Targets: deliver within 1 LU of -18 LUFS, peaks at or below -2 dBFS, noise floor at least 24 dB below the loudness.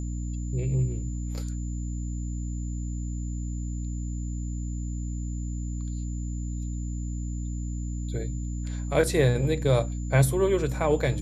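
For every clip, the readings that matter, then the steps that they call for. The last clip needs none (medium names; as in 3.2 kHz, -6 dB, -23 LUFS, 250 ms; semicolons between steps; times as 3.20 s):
hum 60 Hz; highest harmonic 300 Hz; hum level -29 dBFS; steady tone 7.1 kHz; tone level -48 dBFS; loudness -29.5 LUFS; peak level -9.0 dBFS; loudness target -18.0 LUFS
-> hum notches 60/120/180/240/300 Hz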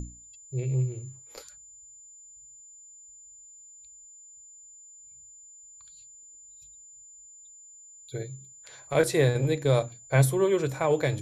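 hum not found; steady tone 7.1 kHz; tone level -48 dBFS
-> band-stop 7.1 kHz, Q 30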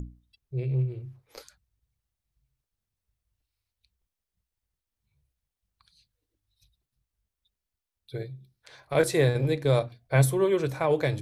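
steady tone not found; loudness -26.0 LUFS; peak level -9.0 dBFS; loudness target -18.0 LUFS
-> trim +8 dB; peak limiter -2 dBFS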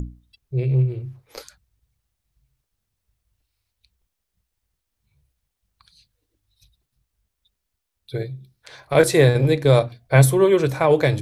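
loudness -18.5 LUFS; peak level -2.0 dBFS; noise floor -80 dBFS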